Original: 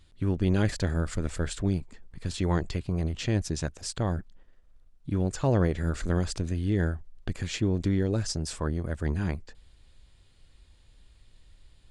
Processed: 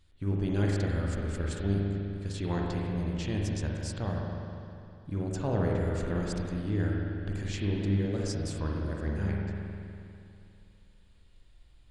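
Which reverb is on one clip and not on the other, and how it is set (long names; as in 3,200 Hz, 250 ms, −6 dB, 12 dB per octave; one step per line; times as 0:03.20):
spring reverb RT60 2.7 s, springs 40/50 ms, chirp 55 ms, DRR −2 dB
level −7 dB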